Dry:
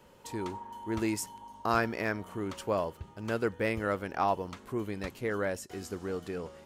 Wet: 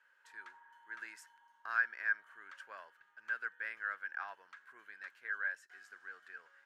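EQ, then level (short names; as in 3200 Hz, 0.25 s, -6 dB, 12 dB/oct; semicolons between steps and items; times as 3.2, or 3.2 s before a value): band-pass 1600 Hz, Q 13; tilt +3.5 dB/oct; +5.0 dB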